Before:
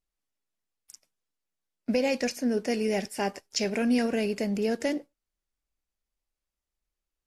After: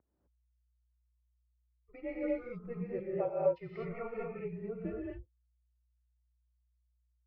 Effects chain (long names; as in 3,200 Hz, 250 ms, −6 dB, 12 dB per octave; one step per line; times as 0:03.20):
spectral dynamics exaggerated over time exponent 2
phaser with its sweep stopped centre 500 Hz, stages 6
mains hum 60 Hz, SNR 10 dB
single-sideband voice off tune −240 Hz 510–2,200 Hz
reverb whose tail is shaped and stops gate 280 ms rising, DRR −4 dB